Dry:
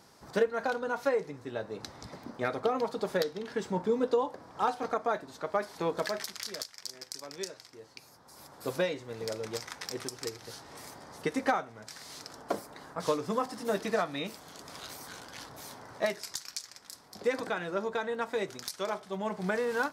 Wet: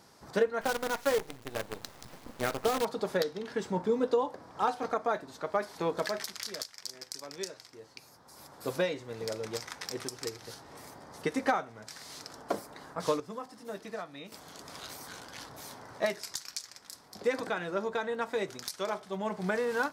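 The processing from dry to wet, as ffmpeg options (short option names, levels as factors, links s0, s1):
-filter_complex "[0:a]asettb=1/sr,asplit=3[s0][s1][s2];[s0]atrim=end=0.614[s3];[s1]atrim=start=0.61:end=2.85,asetpts=PTS-STARTPTS,afade=t=in:d=0.004:c=qsin,afade=t=out:st=2.236:d=0.004:c=qsin,acrusher=bits=6:dc=4:mix=0:aa=0.000001[s4];[s2]atrim=start=2.846[s5];[s3][s4]acrossfade=d=0.004:c1=hsin:c2=qsin[s6];[s6][s5]acrossfade=d=0.004:c1=qsin:c2=hsin,asettb=1/sr,asplit=3[s7][s8][s9];[s7]atrim=end=10.544[s10];[s8]atrim=start=10.54:end=11.14,asetpts=PTS-STARTPTS,afade=t=in:d=0.004:c=qsin,afade=t=out:st=0.596:d=0.004:c=qsin,equalizer=f=5400:w=0.31:g=-4.5[s11];[s9]atrim=start=11.136[s12];[s10][s11]acrossfade=d=0.004:c1=hsin:c2=qsin[s13];[s13][s12]acrossfade=d=0.004:c1=qsin:c2=hsin,asplit=3[s14][s15][s16];[s14]atrim=end=13.202[s17];[s15]atrim=start=13.198:end=14.322,asetpts=PTS-STARTPTS,volume=0.316[s18];[s16]atrim=start=14.318[s19];[s17][s18]acrossfade=d=0.004:c1=hsin:c2=hsin[s20];[s20][s19]acrossfade=d=0.004:c1=hsin:c2=hsin"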